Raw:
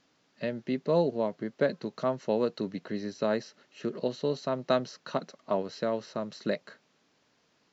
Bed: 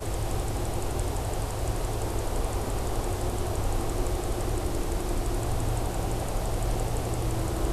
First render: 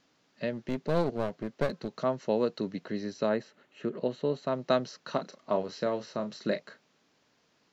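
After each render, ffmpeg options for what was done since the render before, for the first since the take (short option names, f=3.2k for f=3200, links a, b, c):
-filter_complex "[0:a]asettb=1/sr,asplit=3[a][b][c];[a]atrim=end=0.534[d];[b]atrim=start=0.53:end=1.91,asetpts=PTS-STARTPTS,afade=t=in:d=0.004:c=qsin,afade=t=out:st=1.376:d=0.004:c=qsin,aeval=exprs='clip(val(0),-1,0.0178)':c=same[e];[c]atrim=start=1.906[f];[d][e]acrossfade=d=0.004:c1=hsin:c2=qsin[g];[g][f]acrossfade=d=0.004:c1=qsin:c2=hsin,asettb=1/sr,asplit=3[h][i][j];[h]atrim=end=3.294[k];[i]atrim=start=3.29:end=4.47,asetpts=PTS-STARTPTS,afade=t=in:d=0.004:c=qsin,afade=t=out:st=1.176:d=0.004:c=qsin,equalizer=f=5.3k:t=o:w=0.86:g=-12[l];[j]atrim=start=4.466[m];[k][l]acrossfade=d=0.004:c1=hsin:c2=qsin[n];[n][m]acrossfade=d=0.004:c1=qsin:c2=hsin,asettb=1/sr,asplit=3[o][p][q];[o]atrim=end=5.054[r];[p]atrim=start=5.05:end=6.65,asetpts=PTS-STARTPTS,afade=t=in:d=0.004:c=qsin,afade=t=out:st=1.596:d=0.004:c=qsin,asplit=2[s][t];[t]adelay=33,volume=-10dB[u];[s][u]amix=inputs=2:normalize=0,atrim=end_sample=70560[v];[q]atrim=start=6.646[w];[r][v]acrossfade=d=0.004:c1=hsin:c2=qsin[x];[x][w]acrossfade=d=0.004:c1=qsin:c2=hsin"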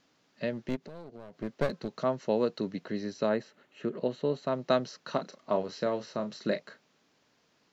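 -filter_complex "[0:a]asplit=3[a][b][c];[a]afade=t=out:st=0.75:d=0.02[d];[b]acompressor=threshold=-43dB:ratio=5:attack=3.2:release=140:knee=1:detection=peak,afade=t=in:st=0.75:d=0.02,afade=t=out:st=1.41:d=0.02[e];[c]afade=t=in:st=1.41:d=0.02[f];[d][e][f]amix=inputs=3:normalize=0"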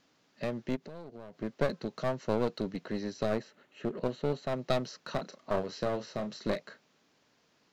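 -af "aeval=exprs='clip(val(0),-1,0.0224)':c=same"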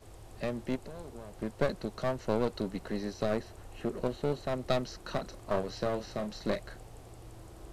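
-filter_complex "[1:a]volume=-21dB[a];[0:a][a]amix=inputs=2:normalize=0"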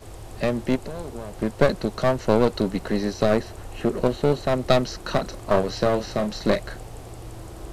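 -af "volume=11dB"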